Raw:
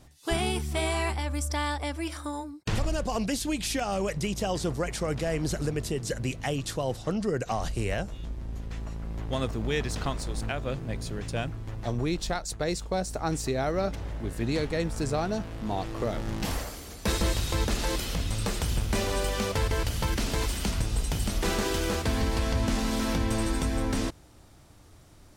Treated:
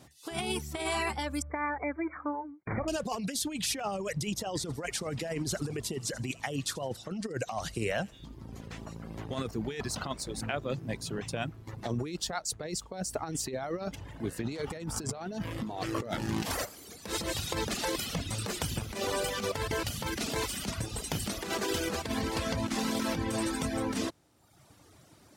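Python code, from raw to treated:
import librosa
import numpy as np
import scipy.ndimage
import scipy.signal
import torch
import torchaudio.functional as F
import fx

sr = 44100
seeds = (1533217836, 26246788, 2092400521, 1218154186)

y = fx.brickwall_lowpass(x, sr, high_hz=2400.0, at=(1.42, 2.88))
y = fx.echo_wet_highpass(y, sr, ms=81, feedback_pct=49, hz=2400.0, wet_db=-9, at=(4.55, 9.26))
y = fx.env_flatten(y, sr, amount_pct=50, at=(14.66, 16.64), fade=0.02)
y = scipy.signal.sosfilt(scipy.signal.butter(2, 120.0, 'highpass', fs=sr, output='sos'), y)
y = fx.dereverb_blind(y, sr, rt60_s=0.99)
y = fx.over_compress(y, sr, threshold_db=-32.0, ratio=-0.5)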